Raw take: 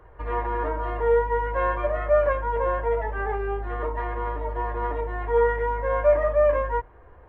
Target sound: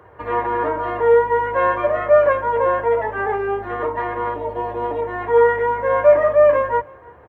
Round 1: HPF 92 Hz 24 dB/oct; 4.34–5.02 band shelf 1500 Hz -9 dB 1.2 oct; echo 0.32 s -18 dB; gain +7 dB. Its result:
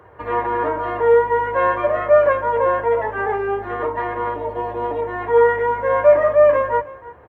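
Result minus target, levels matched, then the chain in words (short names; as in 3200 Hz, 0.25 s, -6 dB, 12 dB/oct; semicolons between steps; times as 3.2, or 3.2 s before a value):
echo-to-direct +6.5 dB
HPF 92 Hz 24 dB/oct; 4.34–5.02 band shelf 1500 Hz -9 dB 1.2 oct; echo 0.32 s -24.5 dB; gain +7 dB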